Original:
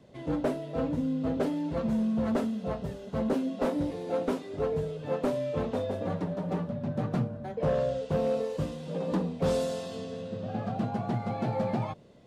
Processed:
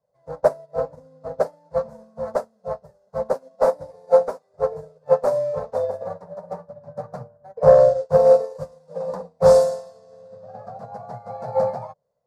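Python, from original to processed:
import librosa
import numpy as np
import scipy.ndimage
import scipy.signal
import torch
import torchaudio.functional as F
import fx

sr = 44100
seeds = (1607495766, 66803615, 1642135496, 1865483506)

y = fx.curve_eq(x, sr, hz=(100.0, 150.0, 320.0, 500.0, 960.0, 1700.0, 3100.0, 4700.0), db=(0, 3, -16, 13, 11, 4, -13, 7))
y = fx.upward_expand(y, sr, threshold_db=-35.0, expansion=2.5)
y = y * librosa.db_to_amplitude(6.5)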